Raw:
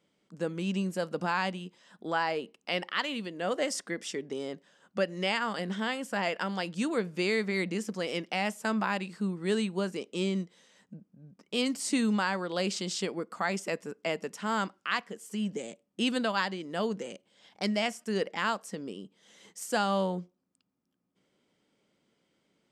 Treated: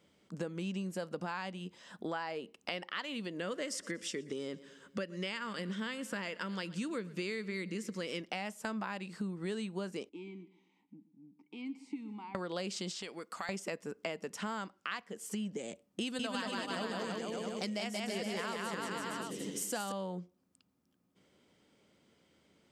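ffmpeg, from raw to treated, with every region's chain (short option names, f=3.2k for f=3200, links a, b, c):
-filter_complex "[0:a]asettb=1/sr,asplit=3[a][b][c];[a]atrim=end=3.394[d];[b]atrim=start=3.39:end=8.21,asetpts=PTS-STARTPTS,afade=t=in:d=0.004:c=qsin,afade=t=out:st=4.816:d=0.004:c=qsin,equalizer=f=750:t=o:w=0.41:g=-14,aecho=1:1:119|238|357|476:0.0794|0.0453|0.0258|0.0147,atrim=end_sample=212562[e];[c]atrim=start=8.206[f];[d][e]acrossfade=d=0.004:c1=hsin:c2=qsin[g];[g][f]acrossfade=d=0.004:c1=qsin:c2=hsin,asettb=1/sr,asplit=3[h][i][j];[h]atrim=end=10.094[k];[i]atrim=start=10.09:end=12.35,asetpts=PTS-STARTPTS,afade=t=in:d=0.004:c=qsin,afade=t=out:st=2.256:d=0.004:c=qsin,acompressor=threshold=-38dB:ratio=2:attack=3.2:release=140:knee=1:detection=peak,asplit=3[l][m][n];[l]bandpass=f=300:t=q:w=8,volume=0dB[o];[m]bandpass=f=870:t=q:w=8,volume=-6dB[p];[n]bandpass=f=2.24k:t=q:w=8,volume=-9dB[q];[o][p][q]amix=inputs=3:normalize=0,aecho=1:1:122|244|366:0.141|0.0579|0.0237,atrim=end_sample=99666[r];[j]atrim=start=12.346[s];[k][r]acrossfade=d=0.004:c1=hsin:c2=qsin[t];[t][s]acrossfade=d=0.004:c1=qsin:c2=hsin,asettb=1/sr,asplit=3[u][v][w];[u]atrim=end=12.914[x];[v]atrim=start=12.91:end=13.49,asetpts=PTS-STARTPTS,afade=t=in:d=0.004:c=qsin,afade=t=out:st=0.576:d=0.004:c=qsin,acrossover=split=2000|6100[y][z][aa];[y]acompressor=threshold=-42dB:ratio=4[ab];[z]acompressor=threshold=-44dB:ratio=4[ac];[aa]acompressor=threshold=-52dB:ratio=4[ad];[ab][ac][ad]amix=inputs=3:normalize=0,lowshelf=f=460:g=-9[ae];[w]atrim=start=13.486[af];[x][ae]acrossfade=d=0.004:c1=hsin:c2=qsin[ag];[ag][af]acrossfade=d=0.004:c1=qsin:c2=hsin,asettb=1/sr,asplit=3[ah][ai][aj];[ah]atrim=end=16.014[ak];[ai]atrim=start=16.01:end=19.92,asetpts=PTS-STARTPTS,afade=t=in:d=0.004:c=qsin,afade=t=out:st=3.906:d=0.004:c=qsin,highshelf=f=6.5k:g=8.5,aecho=1:1:180|333|463|573.6|667.6|747.4:0.794|0.631|0.501|0.398|0.316|0.251,atrim=end_sample=172431[al];[aj]atrim=start=19.916[am];[ak][al]acrossfade=d=0.004:c1=hsin:c2=qsin[an];[an][am]acrossfade=d=0.004:c1=qsin:c2=hsin,equalizer=f=81:w=3.7:g=11,acompressor=threshold=-41dB:ratio=5,volume=4.5dB"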